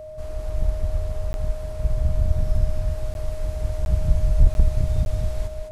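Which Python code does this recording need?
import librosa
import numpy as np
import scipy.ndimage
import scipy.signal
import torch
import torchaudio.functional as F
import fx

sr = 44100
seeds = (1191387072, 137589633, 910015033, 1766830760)

y = fx.fix_declip(x, sr, threshold_db=-6.5)
y = fx.notch(y, sr, hz=620.0, q=30.0)
y = fx.fix_interpolate(y, sr, at_s=(1.33, 3.14, 3.85, 4.54, 5.05), length_ms=11.0)
y = fx.fix_echo_inverse(y, sr, delay_ms=209, level_db=-5.5)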